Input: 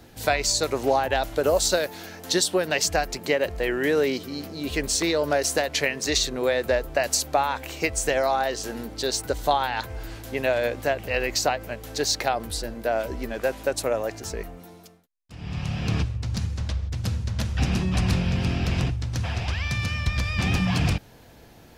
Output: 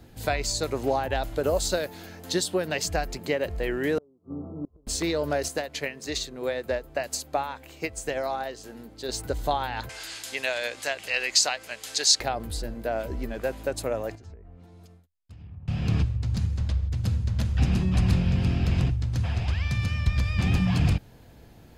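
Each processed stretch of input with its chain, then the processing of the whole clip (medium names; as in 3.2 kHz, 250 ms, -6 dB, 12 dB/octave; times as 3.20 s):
3.98–4.87 s: steep low-pass 1.3 kHz 96 dB/octave + inverted gate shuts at -22 dBFS, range -32 dB
5.48–9.09 s: bass shelf 74 Hz -11.5 dB + upward expansion, over -31 dBFS
9.89–12.20 s: frequency weighting ITU-R 468 + tape noise reduction on one side only encoder only
14.15–15.68 s: low-pass that closes with the level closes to 930 Hz, closed at -26.5 dBFS + compression, threshold -47 dBFS + peaking EQ 83 Hz +12 dB 0.48 oct
whole clip: bass shelf 270 Hz +8 dB; band-stop 5.7 kHz, Q 15; trim -5.5 dB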